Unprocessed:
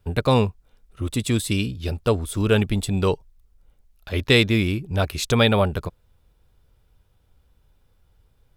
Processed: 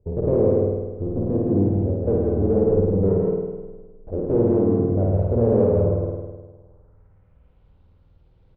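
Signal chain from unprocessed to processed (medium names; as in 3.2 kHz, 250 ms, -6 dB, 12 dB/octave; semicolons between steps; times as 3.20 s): median filter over 25 samples; in parallel at -9.5 dB: decimation with a swept rate 15×, swing 160% 0.49 Hz; on the sum: valve stage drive 24 dB, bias 0.45; low-pass sweep 490 Hz -> 4 kHz, 6.12–7.65 s; on a send: delay 165 ms -3 dB; on the sum: spring tank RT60 1.3 s, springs 51 ms, chirp 30 ms, DRR -2.5 dB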